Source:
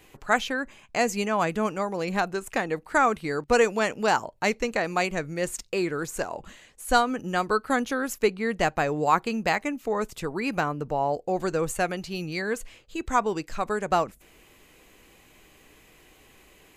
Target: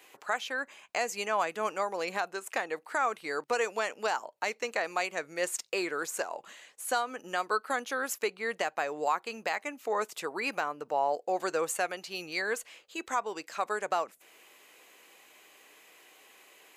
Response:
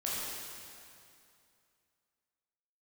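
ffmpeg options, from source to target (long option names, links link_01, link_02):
-af "highpass=520,alimiter=limit=-17.5dB:level=0:latency=1:release=392"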